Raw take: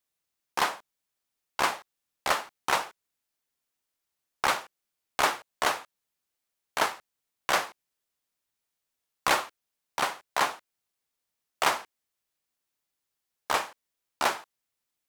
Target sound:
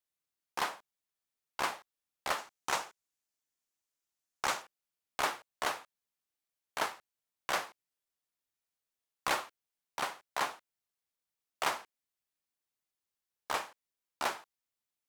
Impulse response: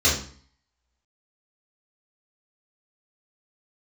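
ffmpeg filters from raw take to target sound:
-filter_complex "[0:a]asettb=1/sr,asplit=3[a][b][c];[a]atrim=end=2.384[d];[b]atrim=start=2.38:end=4.62,asetpts=PTS-STARTPTS,afade=t=in:d=0.004:c=qsin,afade=t=out:st=2.236:d=0.004:c=qsin,equalizer=f=6.7k:t=o:w=0.74:g=6[e];[c]atrim=start=4.616[f];[d][e]acrossfade=d=0.004:c1=hsin:c2=qsin[g];[g][f]acrossfade=d=0.004:c1=qsin:c2=hsin,volume=-7.5dB"

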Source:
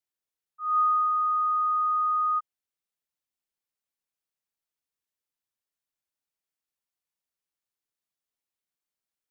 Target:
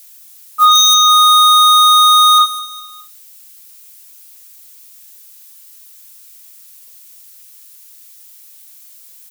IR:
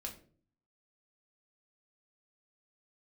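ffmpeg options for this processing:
-filter_complex "[0:a]asplit=2[a][b];[b]acrusher=bits=5:mode=log:mix=0:aa=0.000001,volume=-11dB[c];[a][c]amix=inputs=2:normalize=0,aeval=exprs='0.158*sin(PI/2*2.24*val(0)/0.158)':c=same,aderivative,aecho=1:1:206|412|618:0.0891|0.0348|0.0136,asplit=2[d][e];[1:a]atrim=start_sample=2205[f];[e][f]afir=irnorm=-1:irlink=0,volume=3dB[g];[d][g]amix=inputs=2:normalize=0,alimiter=level_in=29dB:limit=-1dB:release=50:level=0:latency=1,volume=-1dB"

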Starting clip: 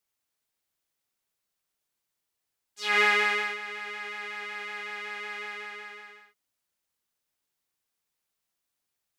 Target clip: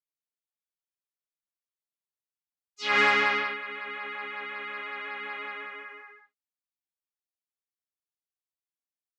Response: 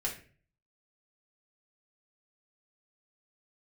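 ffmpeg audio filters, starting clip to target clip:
-filter_complex "[0:a]asplit=3[a][b][c];[b]asetrate=22050,aresample=44100,atempo=2,volume=-17dB[d];[c]asetrate=29433,aresample=44100,atempo=1.49831,volume=-8dB[e];[a][d][e]amix=inputs=3:normalize=0,afftdn=nr=20:nf=-44"

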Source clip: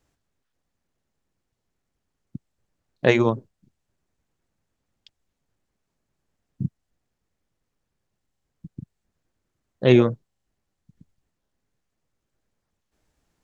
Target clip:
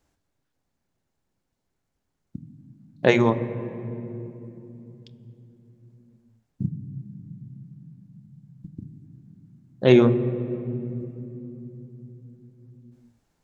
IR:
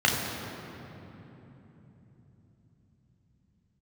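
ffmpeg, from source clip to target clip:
-filter_complex "[0:a]asplit=2[a][b];[1:a]atrim=start_sample=2205,asetrate=52920,aresample=44100,highshelf=f=3.1k:g=-11.5[c];[b][c]afir=irnorm=-1:irlink=0,volume=-22dB[d];[a][d]amix=inputs=2:normalize=0"

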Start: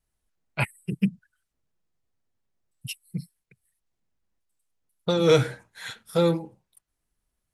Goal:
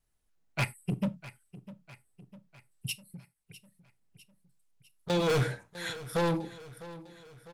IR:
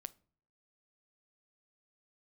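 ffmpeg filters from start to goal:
-filter_complex "[0:a]asoftclip=type=hard:threshold=-24dB,asettb=1/sr,asplit=3[a][b][c];[a]atrim=end=3.034[d];[b]atrim=start=3.03:end=5.1,asetpts=PTS-STARTPTS,afade=t=in:d=0.004:c=qsin,afade=t=out:st=2.066:d=0.004:c=qsin,acompressor=threshold=-46dB:ratio=6[e];[c]atrim=start=5.096[f];[d][e]acrossfade=d=0.004:c1=hsin:c2=qsin[g];[g][f]acrossfade=d=0.004:c1=qsin:c2=hsin,aecho=1:1:652|1304|1956|2608|3260:0.141|0.0777|0.0427|0.0235|0.0129[h];[1:a]atrim=start_sample=2205,atrim=end_sample=4410[i];[h][i]afir=irnorm=-1:irlink=0,volume=4.5dB"

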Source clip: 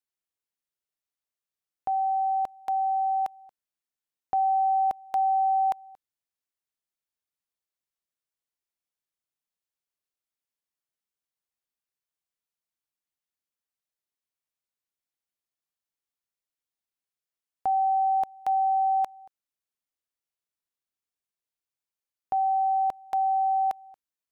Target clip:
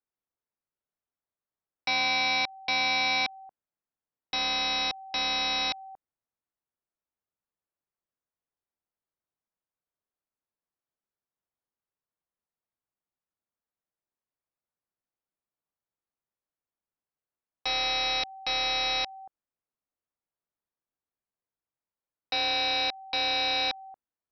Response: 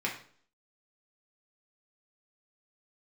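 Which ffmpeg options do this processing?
-af "lowpass=1.3k,aresample=11025,aeval=exprs='(mod(20*val(0)+1,2)-1)/20':c=same,aresample=44100,volume=3.5dB"

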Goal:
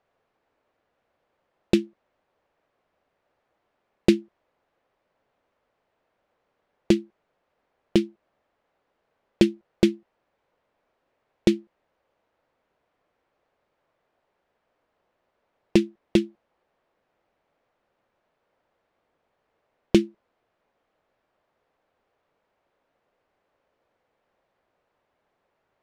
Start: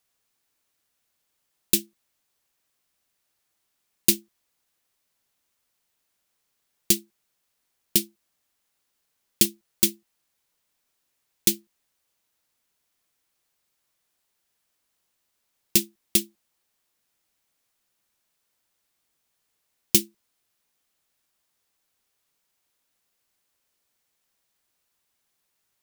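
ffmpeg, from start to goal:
-af "lowpass=1.8k,equalizer=f=560:t=o:w=1.3:g=9.5,volume=7dB"

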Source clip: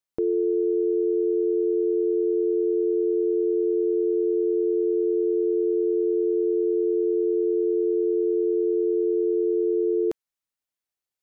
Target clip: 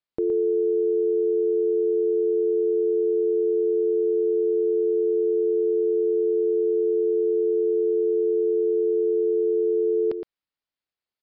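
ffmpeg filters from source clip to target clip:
-filter_complex "[0:a]asplit=2[a][b];[b]aecho=0:1:116:0.398[c];[a][c]amix=inputs=2:normalize=0,aresample=11025,aresample=44100"

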